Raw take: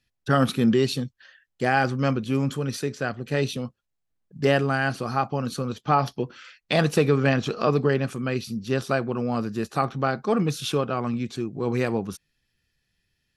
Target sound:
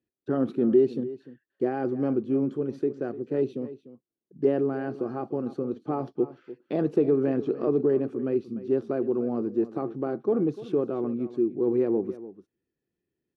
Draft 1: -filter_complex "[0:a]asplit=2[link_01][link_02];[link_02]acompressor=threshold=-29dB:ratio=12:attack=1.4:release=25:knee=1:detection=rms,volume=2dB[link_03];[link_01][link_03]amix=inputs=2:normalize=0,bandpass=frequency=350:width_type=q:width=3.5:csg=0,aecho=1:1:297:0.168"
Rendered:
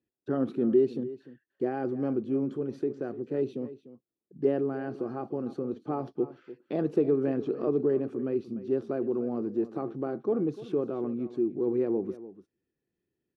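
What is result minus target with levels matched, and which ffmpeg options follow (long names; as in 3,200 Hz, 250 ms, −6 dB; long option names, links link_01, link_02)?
downward compressor: peak gain reduction +9 dB
-filter_complex "[0:a]asplit=2[link_01][link_02];[link_02]acompressor=threshold=-19dB:ratio=12:attack=1.4:release=25:knee=1:detection=rms,volume=2dB[link_03];[link_01][link_03]amix=inputs=2:normalize=0,bandpass=frequency=350:width_type=q:width=3.5:csg=0,aecho=1:1:297:0.168"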